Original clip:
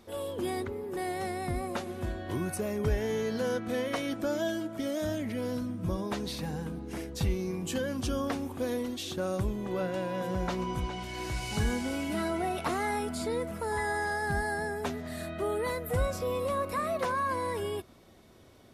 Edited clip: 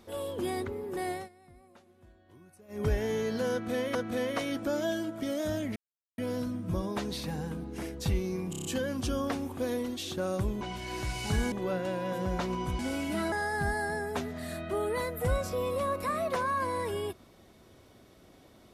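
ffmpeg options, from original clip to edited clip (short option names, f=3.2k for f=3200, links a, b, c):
-filter_complex "[0:a]asplit=14[a][b][c][d][e][f][g][h][i][j][k][l][m][n];[a]atrim=end=1.29,asetpts=PTS-STARTPTS,afade=t=out:st=1.12:d=0.17:silence=0.0668344[o];[b]atrim=start=1.29:end=2.68,asetpts=PTS-STARTPTS,volume=-23.5dB[p];[c]atrim=start=2.68:end=3.952,asetpts=PTS-STARTPTS,afade=t=in:d=0.17:silence=0.0668344[q];[d]atrim=start=3.518:end=5.33,asetpts=PTS-STARTPTS,afade=t=out:st=1.808:d=0.004:c=hsin,apad=pad_dur=0.42[r];[e]atrim=start=5.33:end=7.682,asetpts=PTS-STARTPTS,afade=t=in:d=0.004:c=hsin[s];[f]atrim=start=7.648:end=7.682[t];[g]atrim=start=7.648:end=7.682[u];[h]atrim=start=7.648:end=7.682[v];[i]atrim=start=7.648:end=7.682[w];[j]atrim=start=7.648:end=9.612[x];[k]atrim=start=10.878:end=11.792[y];[l]atrim=start=9.608:end=10.882[z];[m]atrim=start=11.788:end=12.322[aa];[n]atrim=start=14.008[ab];[o][p][q]concat=n=3:v=0:a=1[ac];[r][s]concat=n=2:v=0:a=1[ad];[ac][ad]acrossfade=d=0.004:c1=hsin:c2=hsin[ae];[ae][t]acrossfade=d=0.004:c1=hsin:c2=hsin[af];[af][u]acrossfade=d=0.004:c1=hsin:c2=hsin[ag];[ag][v]acrossfade=d=0.004:c1=hsin:c2=hsin[ah];[ah][w]acrossfade=d=0.004:c1=hsin:c2=hsin[ai];[ai][x]acrossfade=d=0.004:c1=hsin:c2=hsin[aj];[aj][y]acrossfade=d=0.004:c1=hsin:c2=hsin[ak];[ak][z]acrossfade=d=0.004:c1=hsin:c2=hsin[al];[al][aa]acrossfade=d=0.004:c1=hsin:c2=hsin[am];[am][ab]acrossfade=d=0.004:c1=hsin:c2=hsin"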